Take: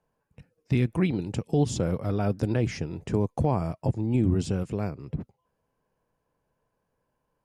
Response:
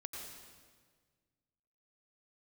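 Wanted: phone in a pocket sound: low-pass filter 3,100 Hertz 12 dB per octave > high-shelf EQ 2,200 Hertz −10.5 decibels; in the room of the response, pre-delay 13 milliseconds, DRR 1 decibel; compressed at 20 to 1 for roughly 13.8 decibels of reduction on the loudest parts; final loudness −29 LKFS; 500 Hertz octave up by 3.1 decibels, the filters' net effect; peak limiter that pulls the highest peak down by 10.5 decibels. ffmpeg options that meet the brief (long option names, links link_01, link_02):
-filter_complex "[0:a]equalizer=frequency=500:width_type=o:gain=4.5,acompressor=threshold=-31dB:ratio=20,alimiter=level_in=5dB:limit=-24dB:level=0:latency=1,volume=-5dB,asplit=2[link_01][link_02];[1:a]atrim=start_sample=2205,adelay=13[link_03];[link_02][link_03]afir=irnorm=-1:irlink=0,volume=1dB[link_04];[link_01][link_04]amix=inputs=2:normalize=0,lowpass=3100,highshelf=frequency=2200:gain=-10.5,volume=9.5dB"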